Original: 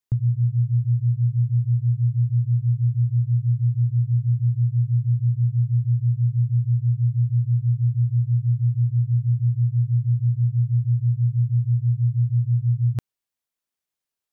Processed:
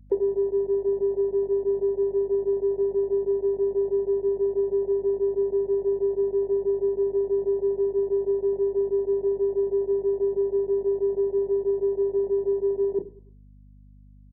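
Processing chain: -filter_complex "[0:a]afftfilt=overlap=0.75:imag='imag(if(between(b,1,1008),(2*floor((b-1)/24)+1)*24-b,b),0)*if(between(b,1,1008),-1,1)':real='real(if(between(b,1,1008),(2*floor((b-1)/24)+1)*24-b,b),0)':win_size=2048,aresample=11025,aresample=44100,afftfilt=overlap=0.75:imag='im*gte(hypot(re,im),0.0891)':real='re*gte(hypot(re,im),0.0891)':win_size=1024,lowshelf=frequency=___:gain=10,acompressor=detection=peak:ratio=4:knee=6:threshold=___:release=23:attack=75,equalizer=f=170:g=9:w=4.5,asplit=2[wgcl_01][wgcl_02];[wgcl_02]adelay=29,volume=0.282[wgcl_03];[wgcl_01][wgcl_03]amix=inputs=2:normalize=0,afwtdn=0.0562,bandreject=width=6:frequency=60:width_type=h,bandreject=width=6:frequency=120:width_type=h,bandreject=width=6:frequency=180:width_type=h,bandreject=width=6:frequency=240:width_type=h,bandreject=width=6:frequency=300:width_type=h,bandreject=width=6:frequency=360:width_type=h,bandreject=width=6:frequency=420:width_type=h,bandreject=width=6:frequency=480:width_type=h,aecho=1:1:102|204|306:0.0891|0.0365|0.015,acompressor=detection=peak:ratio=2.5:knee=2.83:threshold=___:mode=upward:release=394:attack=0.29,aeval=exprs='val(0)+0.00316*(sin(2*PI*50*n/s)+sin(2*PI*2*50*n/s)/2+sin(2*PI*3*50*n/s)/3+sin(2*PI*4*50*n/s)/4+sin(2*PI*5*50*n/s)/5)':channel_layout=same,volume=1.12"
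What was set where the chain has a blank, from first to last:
66, 0.0501, 0.00794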